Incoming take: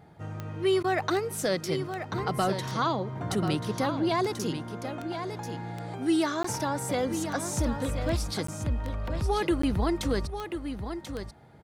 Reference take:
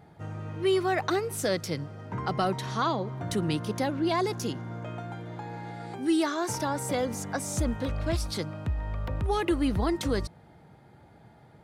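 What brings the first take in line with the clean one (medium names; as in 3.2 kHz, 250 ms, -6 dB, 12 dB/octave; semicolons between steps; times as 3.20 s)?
de-click; interpolate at 6.43/8.47/9.62 s, 14 ms; interpolate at 0.83 s, 10 ms; inverse comb 1037 ms -8.5 dB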